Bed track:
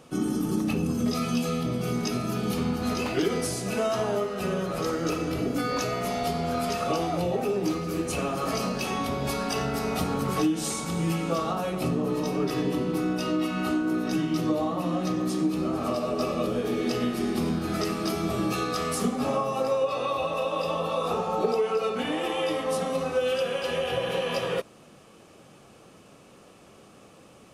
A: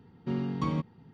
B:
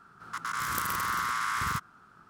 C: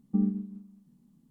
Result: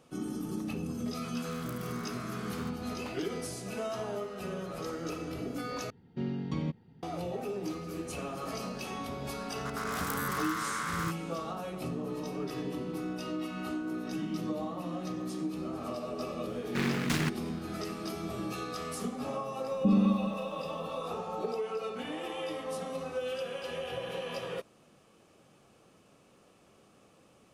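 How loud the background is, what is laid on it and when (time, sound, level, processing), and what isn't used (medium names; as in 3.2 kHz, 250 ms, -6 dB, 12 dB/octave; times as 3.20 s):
bed track -9.5 dB
0.91 s: add B -16 dB
5.90 s: replace with A -3 dB + peaking EQ 1.1 kHz -10.5 dB 0.43 oct
9.32 s: add B -5 dB + buffer glitch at 0.86 s
14.08 s: add C -1.5 dB + compression, threshold -38 dBFS
16.48 s: add A -0.5 dB + delay time shaken by noise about 1.6 kHz, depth 0.34 ms
19.71 s: add C -17 dB + loudness maximiser +27.5 dB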